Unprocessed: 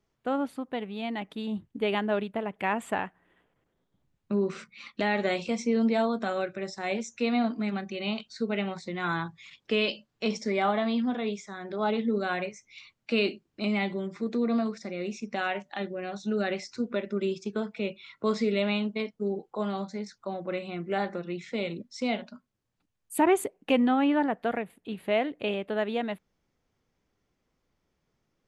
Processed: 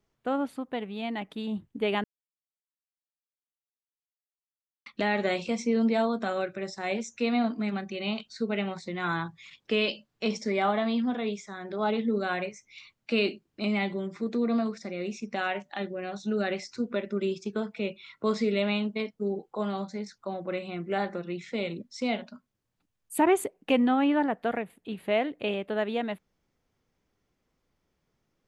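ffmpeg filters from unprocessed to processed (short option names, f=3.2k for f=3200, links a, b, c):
-filter_complex "[0:a]asplit=3[a][b][c];[a]atrim=end=2.04,asetpts=PTS-STARTPTS,afade=t=out:st=2.036:d=0.004:c=hsin[d];[b]atrim=start=2.04:end=4.86,asetpts=PTS-STARTPTS,volume=0[e];[c]atrim=start=4.86,asetpts=PTS-STARTPTS,afade=t=in:d=0.004:c=hsin[f];[d][e][f]concat=n=3:v=0:a=1"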